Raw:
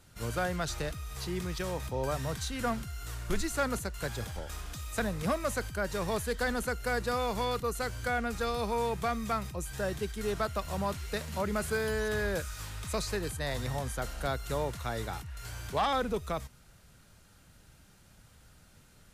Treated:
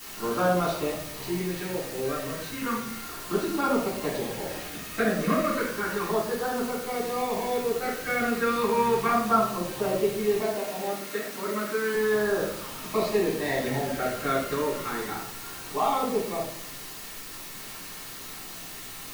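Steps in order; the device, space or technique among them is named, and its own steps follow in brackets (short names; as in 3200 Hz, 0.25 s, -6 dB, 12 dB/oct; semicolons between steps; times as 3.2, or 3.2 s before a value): shortwave radio (BPF 290–2500 Hz; tremolo 0.22 Hz, depth 50%; LFO notch saw down 0.33 Hz 580–2400 Hz; whine 1800 Hz -66 dBFS; white noise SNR 9 dB); 10.38–11.94 HPF 200 Hz 24 dB/oct; shoebox room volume 850 m³, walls furnished, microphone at 10 m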